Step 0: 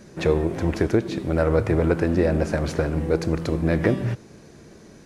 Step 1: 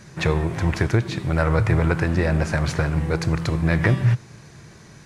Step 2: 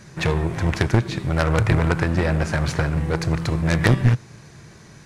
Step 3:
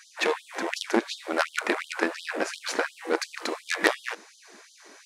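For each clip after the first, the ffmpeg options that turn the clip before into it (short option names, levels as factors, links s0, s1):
-af "equalizer=f=125:t=o:w=1:g=10,equalizer=f=250:t=o:w=1:g=-6,equalizer=f=500:t=o:w=1:g=-5,equalizer=f=1000:t=o:w=1:g=5,equalizer=f=2000:t=o:w=1:g=5,equalizer=f=4000:t=o:w=1:g=3,equalizer=f=8000:t=o:w=1:g=4"
-af "aeval=exprs='0.531*(cos(1*acos(clip(val(0)/0.531,-1,1)))-cos(1*PI/2))+0.0473*(cos(3*acos(clip(val(0)/0.531,-1,1)))-cos(3*PI/2))+0.106*(cos(6*acos(clip(val(0)/0.531,-1,1)))-cos(6*PI/2))+0.075*(cos(8*acos(clip(val(0)/0.531,-1,1)))-cos(8*PI/2))':c=same,volume=1.41"
-af "afftfilt=real='re*gte(b*sr/1024,210*pow(3100/210,0.5+0.5*sin(2*PI*2.8*pts/sr)))':imag='im*gte(b*sr/1024,210*pow(3100/210,0.5+0.5*sin(2*PI*2.8*pts/sr)))':win_size=1024:overlap=0.75"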